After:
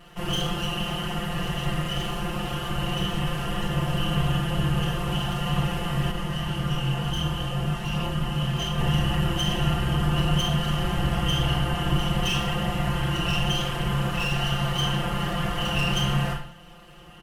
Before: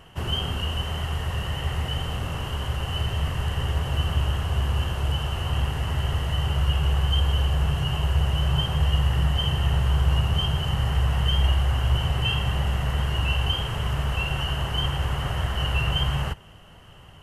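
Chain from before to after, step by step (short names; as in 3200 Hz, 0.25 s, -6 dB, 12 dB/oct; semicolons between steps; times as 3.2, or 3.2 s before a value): minimum comb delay 5.7 ms; reverb RT60 0.55 s, pre-delay 23 ms, DRR 0.5 dB; 6.11–8.78 chorus voices 2, 1.3 Hz, delay 24 ms, depth 3 ms; comb 5.8 ms, depth 87%; gain -3 dB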